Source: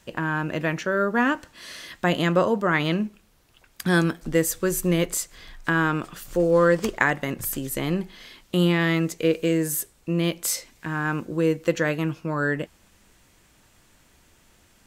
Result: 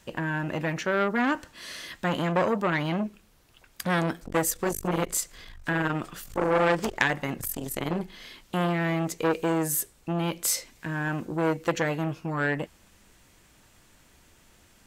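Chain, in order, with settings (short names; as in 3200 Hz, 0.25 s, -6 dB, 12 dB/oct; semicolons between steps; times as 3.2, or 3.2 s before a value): core saturation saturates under 2500 Hz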